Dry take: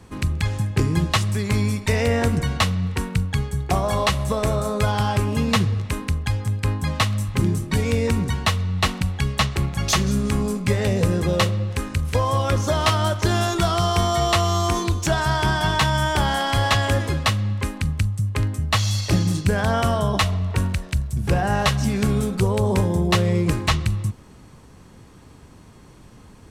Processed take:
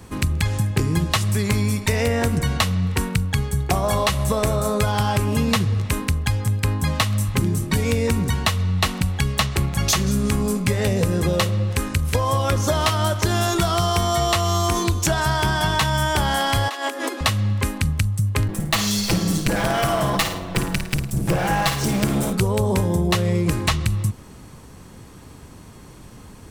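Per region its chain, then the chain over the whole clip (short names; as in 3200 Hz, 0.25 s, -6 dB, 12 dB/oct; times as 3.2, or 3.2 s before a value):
16.68–17.21 negative-ratio compressor -26 dBFS + rippled Chebyshev high-pass 240 Hz, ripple 3 dB
18.48–22.33 minimum comb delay 6 ms + flutter echo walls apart 9.2 m, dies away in 0.38 s
whole clip: high shelf 11000 Hz +11.5 dB; compressor, threshold -20 dBFS; gain +4 dB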